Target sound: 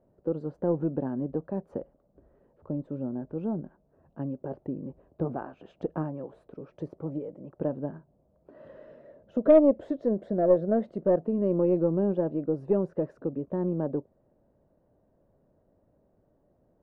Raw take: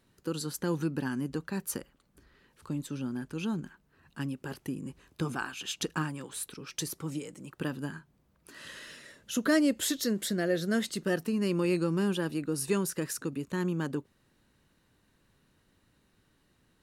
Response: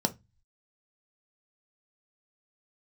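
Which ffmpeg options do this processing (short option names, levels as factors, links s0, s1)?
-af "lowpass=f=620:t=q:w=4.9,aeval=exprs='0.422*(cos(1*acos(clip(val(0)/0.422,-1,1)))-cos(1*PI/2))+0.0266*(cos(4*acos(clip(val(0)/0.422,-1,1)))-cos(4*PI/2))+0.00596*(cos(6*acos(clip(val(0)/0.422,-1,1)))-cos(6*PI/2))':c=same"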